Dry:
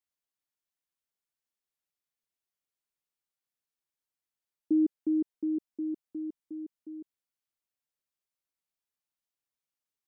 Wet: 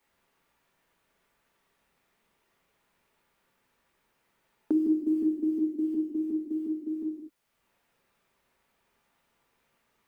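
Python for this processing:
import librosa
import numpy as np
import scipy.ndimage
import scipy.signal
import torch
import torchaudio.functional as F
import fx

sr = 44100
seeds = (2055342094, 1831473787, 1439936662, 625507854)

y = fx.block_float(x, sr, bits=7)
y = fx.rev_gated(y, sr, seeds[0], gate_ms=280, shape='falling', drr_db=-5.0)
y = fx.band_squash(y, sr, depth_pct=70)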